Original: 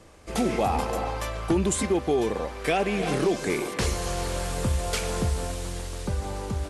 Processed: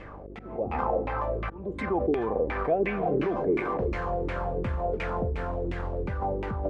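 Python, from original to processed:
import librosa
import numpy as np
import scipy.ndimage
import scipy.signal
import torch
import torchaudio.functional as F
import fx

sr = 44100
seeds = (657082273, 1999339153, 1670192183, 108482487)

p1 = fx.over_compress(x, sr, threshold_db=-36.0, ratio=-1.0)
p2 = x + (p1 * 10.0 ** (1.0 / 20.0))
p3 = fx.auto_swell(p2, sr, attack_ms=396.0)
p4 = fx.dmg_buzz(p3, sr, base_hz=50.0, harmonics=11, level_db=-41.0, tilt_db=-4, odd_only=False)
p5 = fx.filter_lfo_lowpass(p4, sr, shape='saw_down', hz=2.8, low_hz=300.0, high_hz=2400.0, q=3.4)
y = p5 * 10.0 ** (-6.5 / 20.0)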